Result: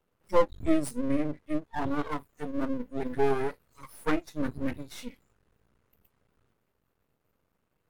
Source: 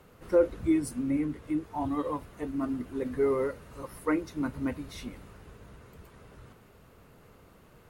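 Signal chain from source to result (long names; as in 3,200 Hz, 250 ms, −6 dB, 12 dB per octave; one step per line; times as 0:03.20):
noise reduction from a noise print of the clip's start 22 dB
half-wave rectification
level +5.5 dB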